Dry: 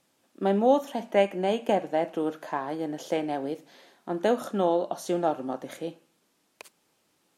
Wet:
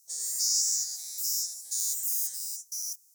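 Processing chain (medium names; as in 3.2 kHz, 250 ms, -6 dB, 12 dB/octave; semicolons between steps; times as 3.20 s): every event in the spectrogram widened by 480 ms; elliptic high-pass 2.4 kHz, stop band 50 dB; speed mistake 33 rpm record played at 78 rpm; trim +8 dB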